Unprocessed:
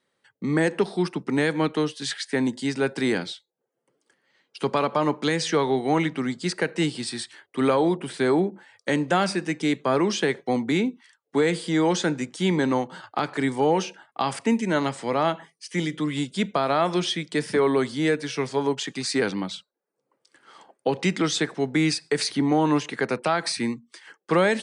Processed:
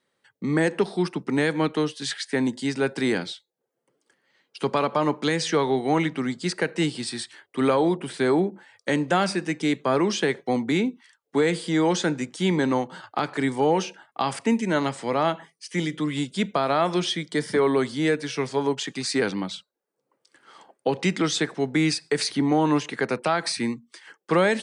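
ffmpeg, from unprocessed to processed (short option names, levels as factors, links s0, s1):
-filter_complex "[0:a]asettb=1/sr,asplit=3[s0][s1][s2];[s0]atrim=end=17.164[s3];[s1]atrim=start=17.16:end=17.56,asetpts=PTS-STARTPTS,afade=t=in:d=0.004:c=qsin,afade=t=out:st=0.396:d=0.004:c=qsin,asuperstop=centerf=2600:order=4:qfactor=7.3[s4];[s2]atrim=start=17.556[s5];[s3][s4]acrossfade=d=0.004:c1=hsin:c2=qsin[s6];[s6][s5]acrossfade=d=0.004:c1=qsin:c2=hsin"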